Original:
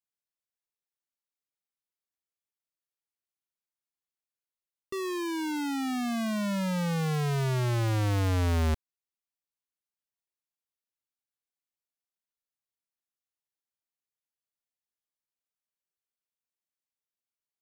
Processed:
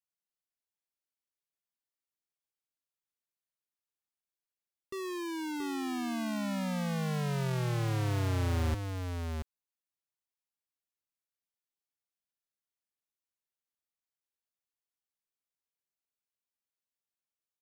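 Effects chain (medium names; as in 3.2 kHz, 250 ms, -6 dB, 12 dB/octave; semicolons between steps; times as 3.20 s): delay 678 ms -5.5 dB; trim -5 dB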